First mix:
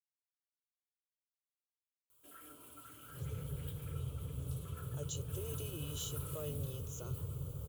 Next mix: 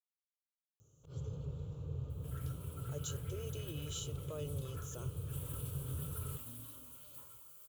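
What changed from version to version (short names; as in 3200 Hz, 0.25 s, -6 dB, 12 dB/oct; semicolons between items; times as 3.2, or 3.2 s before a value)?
speech: entry -2.05 s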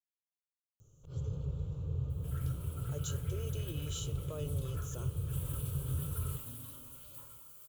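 speech: remove HPF 130 Hz 6 dB/oct; reverb: on, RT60 2.2 s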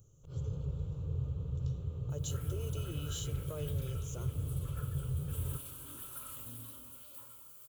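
speech: entry -0.80 s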